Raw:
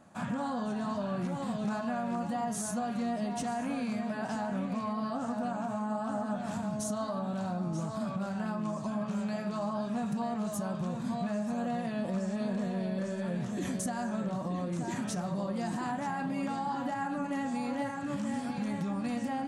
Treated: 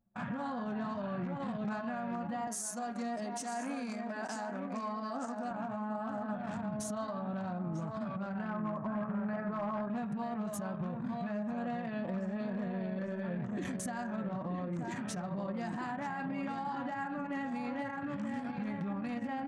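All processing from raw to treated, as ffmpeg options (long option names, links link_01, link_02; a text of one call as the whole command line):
ffmpeg -i in.wav -filter_complex "[0:a]asettb=1/sr,asplit=3[link_01][link_02][link_03];[link_01]atrim=end=2.474[link_04];[link_02]atrim=start=2.47:end=5.51,asetpts=PTS-STARTPTS,afade=type=in:duration=0.004:curve=qsin,afade=type=out:start_time=3.036:duration=0.004:curve=qsin,highpass=frequency=230:width=0.5412,highpass=frequency=230:width=1.3066,highshelf=frequency=4300:width_type=q:width=1.5:gain=7.5[link_05];[link_03]atrim=start=5.506[link_06];[link_04][link_05]acrossfade=duration=0.004:curve1=hsin:curve2=qsin[link_07];[link_07][link_06]acrossfade=duration=0.004:curve1=qsin:curve2=hsin,asettb=1/sr,asplit=3[link_08][link_09][link_10];[link_08]atrim=end=8.484[link_11];[link_09]atrim=start=8.48:end=9.9,asetpts=PTS-STARTPTS,afade=type=in:duration=0.004:curve=qsin,afade=type=out:start_time=1.416:duration=0.004:curve=qsin,highshelf=frequency=2200:width_type=q:width=1.5:gain=-11,asoftclip=type=hard:threshold=-28dB[link_12];[link_10]atrim=start=9.896[link_13];[link_11][link_12]acrossfade=duration=0.004:curve1=hsin:curve2=qsin[link_14];[link_14][link_13]acrossfade=duration=0.004:curve1=qsin:curve2=hsin,anlmdn=0.398,equalizer=frequency=1900:width=1.2:gain=5,alimiter=level_in=5.5dB:limit=-24dB:level=0:latency=1:release=231,volume=-5.5dB" out.wav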